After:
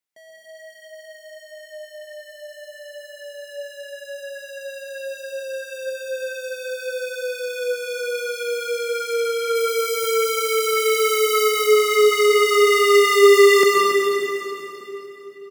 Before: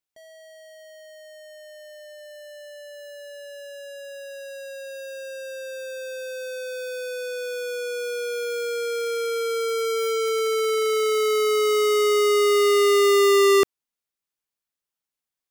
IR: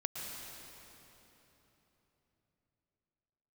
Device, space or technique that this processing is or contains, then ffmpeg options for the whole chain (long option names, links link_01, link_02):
stadium PA: -filter_complex "[0:a]asettb=1/sr,asplit=3[link_01][link_02][link_03];[link_01]atrim=end=9.554[link_04];[link_02]atrim=start=9.55:end=11.49,asetpts=PTS-STARTPTS,afade=type=in:duration=0.004:curve=qsin,afade=type=out:start_time=1.936:duration=0.004:curve=qsin,highshelf=frequency=9000:gain=11.5[link_05];[link_03]atrim=start=11.486[link_06];[link_04][link_05]acrossfade=duration=0.004:curve1=hsin:curve2=qsin[link_07];[link_07][link_06]acrossfade=duration=0.004:curve1=qsin:curve2=hsin,highpass=frequency=140:width=0.5412,highpass=frequency=140:width=1.3066,equalizer=frequency=2000:width_type=o:width=0.28:gain=6,aecho=1:1:209.9|279.9:0.251|0.316[link_08];[1:a]atrim=start_sample=2205[link_09];[link_08][link_09]afir=irnorm=-1:irlink=0,volume=1.5dB"